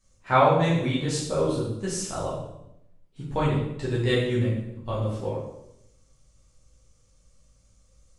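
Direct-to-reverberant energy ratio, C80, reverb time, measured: -8.0 dB, 5.0 dB, 0.80 s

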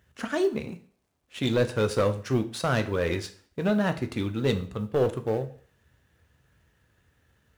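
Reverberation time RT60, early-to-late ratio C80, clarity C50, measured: 0.50 s, 18.0 dB, 14.5 dB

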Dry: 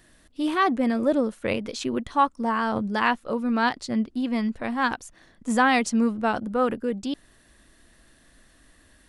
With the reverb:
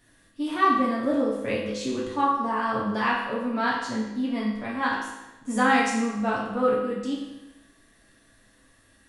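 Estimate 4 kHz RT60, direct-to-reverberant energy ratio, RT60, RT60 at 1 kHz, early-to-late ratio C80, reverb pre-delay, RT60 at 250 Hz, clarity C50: 0.90 s, -6.0 dB, 1.0 s, 1.0 s, 4.5 dB, 4 ms, 1.0 s, 2.0 dB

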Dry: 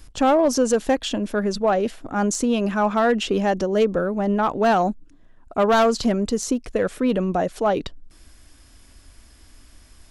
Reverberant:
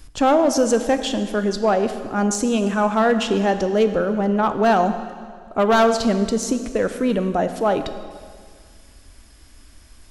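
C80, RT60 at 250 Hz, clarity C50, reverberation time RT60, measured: 11.0 dB, 2.0 s, 10.0 dB, 1.9 s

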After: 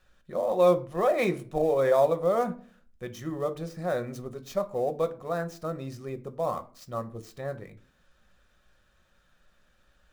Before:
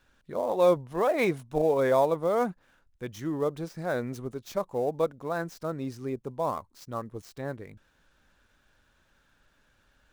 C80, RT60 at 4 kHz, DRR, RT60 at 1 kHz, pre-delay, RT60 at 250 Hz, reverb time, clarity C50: 21.0 dB, 0.25 s, 8.0 dB, 0.40 s, 5 ms, 0.60 s, 0.45 s, 17.5 dB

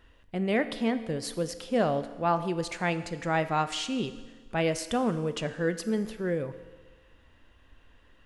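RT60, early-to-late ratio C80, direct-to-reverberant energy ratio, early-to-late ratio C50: 1.4 s, 14.5 dB, 10.5 dB, 13.0 dB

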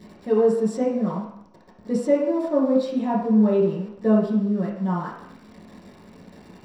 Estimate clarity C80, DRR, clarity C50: 6.0 dB, -6.5 dB, 3.0 dB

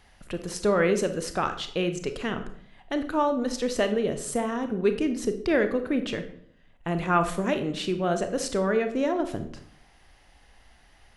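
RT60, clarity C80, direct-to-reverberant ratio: 0.65 s, 14.5 dB, 8.0 dB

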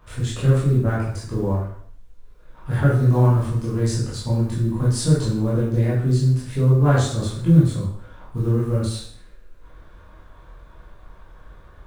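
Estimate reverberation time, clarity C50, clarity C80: 0.60 s, 2.0 dB, 6.0 dB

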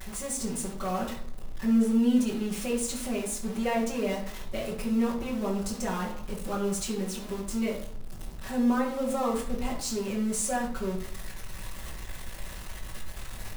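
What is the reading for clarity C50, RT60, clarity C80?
6.5 dB, 0.65 s, 10.5 dB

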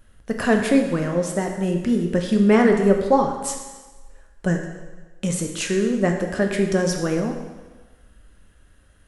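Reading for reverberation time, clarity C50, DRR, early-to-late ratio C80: 1.3 s, 5.5 dB, 3.0 dB, 7.0 dB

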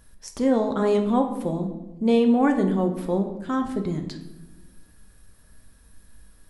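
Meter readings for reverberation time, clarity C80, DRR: 1.0 s, 11.0 dB, 4.5 dB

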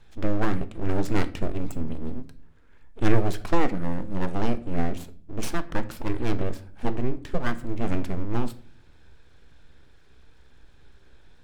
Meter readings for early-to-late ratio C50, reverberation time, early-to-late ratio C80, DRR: 16.5 dB, 0.45 s, 21.0 dB, 11.0 dB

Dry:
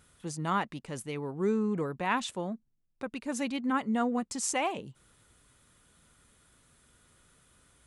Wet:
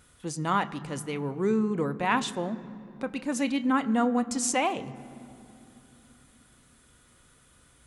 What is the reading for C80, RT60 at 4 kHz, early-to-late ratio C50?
17.5 dB, 1.7 s, 17.0 dB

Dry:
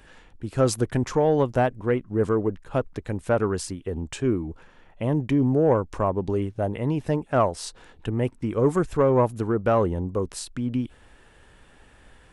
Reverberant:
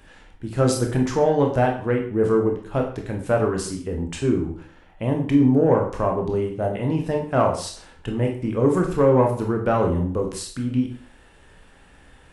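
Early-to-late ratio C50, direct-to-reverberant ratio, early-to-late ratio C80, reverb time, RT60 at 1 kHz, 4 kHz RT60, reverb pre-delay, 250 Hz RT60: 7.5 dB, 1.0 dB, 11.0 dB, 0.45 s, 0.45 s, 0.45 s, 12 ms, 0.50 s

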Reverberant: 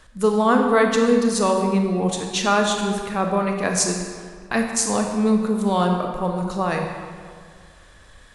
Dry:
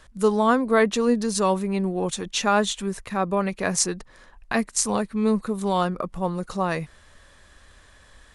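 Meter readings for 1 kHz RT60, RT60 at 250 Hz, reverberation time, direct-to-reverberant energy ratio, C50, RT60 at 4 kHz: 1.9 s, 2.0 s, 1.9 s, 2.5 dB, 3.5 dB, 1.2 s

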